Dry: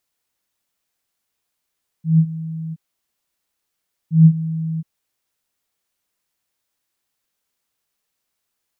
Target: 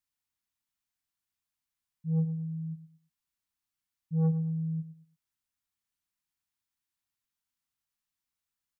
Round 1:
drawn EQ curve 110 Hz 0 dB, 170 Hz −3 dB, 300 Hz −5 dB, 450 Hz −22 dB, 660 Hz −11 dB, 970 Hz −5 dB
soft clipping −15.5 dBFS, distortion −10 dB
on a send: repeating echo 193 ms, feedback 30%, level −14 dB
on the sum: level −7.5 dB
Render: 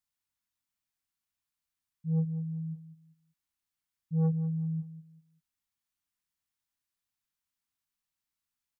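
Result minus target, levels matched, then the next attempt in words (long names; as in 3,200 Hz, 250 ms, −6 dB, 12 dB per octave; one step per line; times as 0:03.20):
echo 81 ms late
drawn EQ curve 110 Hz 0 dB, 170 Hz −3 dB, 300 Hz −5 dB, 450 Hz −22 dB, 660 Hz −11 dB, 970 Hz −5 dB
soft clipping −15.5 dBFS, distortion −10 dB
on a send: repeating echo 112 ms, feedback 30%, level −14 dB
on the sum: level −7.5 dB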